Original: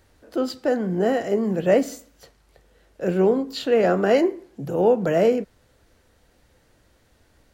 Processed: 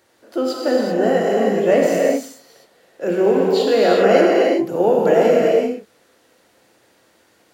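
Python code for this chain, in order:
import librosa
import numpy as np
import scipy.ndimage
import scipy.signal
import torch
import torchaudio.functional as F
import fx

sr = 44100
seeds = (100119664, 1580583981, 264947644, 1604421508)

y = scipy.signal.sosfilt(scipy.signal.butter(2, 260.0, 'highpass', fs=sr, output='sos'), x)
y = fx.rev_gated(y, sr, seeds[0], gate_ms=420, shape='flat', drr_db=-3.0)
y = y * 10.0 ** (2.0 / 20.0)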